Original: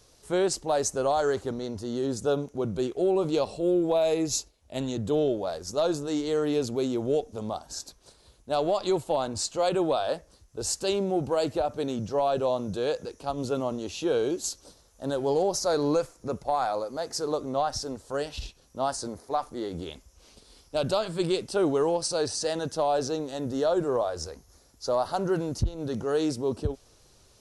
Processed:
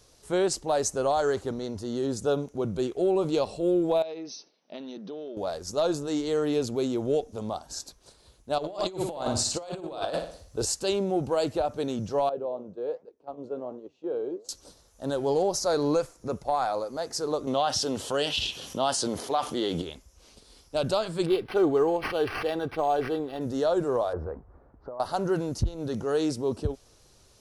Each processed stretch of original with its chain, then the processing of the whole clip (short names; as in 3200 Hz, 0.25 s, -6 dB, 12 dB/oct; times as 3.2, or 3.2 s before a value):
4.02–5.37 compressor, threshold -35 dBFS + brick-wall FIR band-pass 160–6300 Hz
8.58–10.65 flutter echo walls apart 10.1 m, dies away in 0.49 s + negative-ratio compressor -30 dBFS, ratio -0.5
12.29–14.49 gate -34 dBFS, range -10 dB + band-pass 450 Hz, Q 1.1 + flange 1.3 Hz, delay 4.5 ms, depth 10 ms, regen +81%
17.47–19.82 HPF 120 Hz + bell 3100 Hz +14 dB 0.49 oct + fast leveller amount 50%
21.26–23.41 comb 2.6 ms, depth 38% + decimation joined by straight lines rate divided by 6×
24.13–25 LPF 1400 Hz 24 dB/oct + negative-ratio compressor -34 dBFS
whole clip: dry